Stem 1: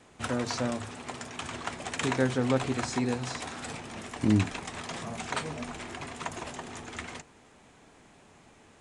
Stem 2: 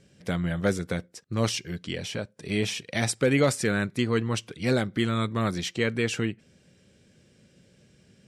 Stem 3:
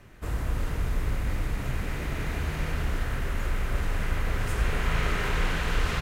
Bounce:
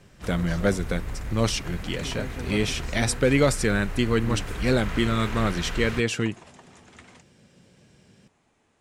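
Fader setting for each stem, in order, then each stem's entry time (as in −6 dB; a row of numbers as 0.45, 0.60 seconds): −10.5, +2.0, −5.0 decibels; 0.00, 0.00, 0.00 seconds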